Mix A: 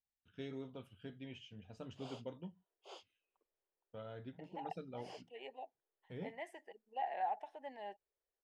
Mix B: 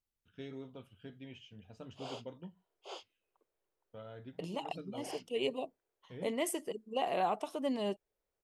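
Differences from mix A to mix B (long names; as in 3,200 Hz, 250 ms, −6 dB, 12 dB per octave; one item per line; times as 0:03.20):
second voice: remove pair of resonant band-passes 1,200 Hz, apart 1.1 octaves
background +7.5 dB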